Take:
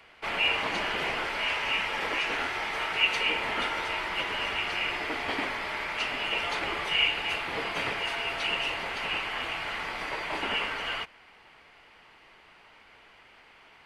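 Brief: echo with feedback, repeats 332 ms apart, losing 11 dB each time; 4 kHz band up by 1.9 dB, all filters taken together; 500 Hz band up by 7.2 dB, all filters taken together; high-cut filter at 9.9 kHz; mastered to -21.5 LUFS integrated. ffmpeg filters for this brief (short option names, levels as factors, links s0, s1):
-af "lowpass=9900,equalizer=f=500:t=o:g=9,equalizer=f=4000:t=o:g=3,aecho=1:1:332|664|996:0.282|0.0789|0.0221,volume=1.78"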